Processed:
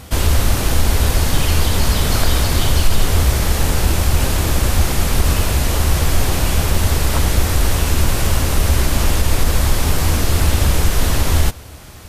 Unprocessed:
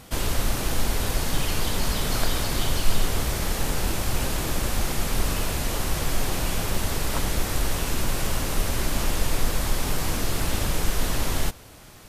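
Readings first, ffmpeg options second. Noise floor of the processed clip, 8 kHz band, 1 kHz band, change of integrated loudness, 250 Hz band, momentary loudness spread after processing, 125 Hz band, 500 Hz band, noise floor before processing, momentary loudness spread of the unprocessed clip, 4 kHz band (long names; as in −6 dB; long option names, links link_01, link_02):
−34 dBFS, +7.5 dB, +7.5 dB, +9.5 dB, +8.0 dB, 1 LU, +13.0 dB, +7.5 dB, −45 dBFS, 1 LU, +7.5 dB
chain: -af "equalizer=frequency=75:width_type=o:width=0.64:gain=11.5,alimiter=level_in=9.5dB:limit=-1dB:release=50:level=0:latency=1,volume=-2dB"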